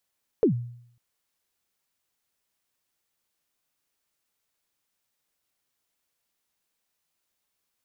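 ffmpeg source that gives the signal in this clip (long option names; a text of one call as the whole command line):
ffmpeg -f lavfi -i "aevalsrc='0.2*pow(10,-3*t/0.66)*sin(2*PI*(500*0.103/log(120/500)*(exp(log(120/500)*min(t,0.103)/0.103)-1)+120*max(t-0.103,0)))':duration=0.55:sample_rate=44100" out.wav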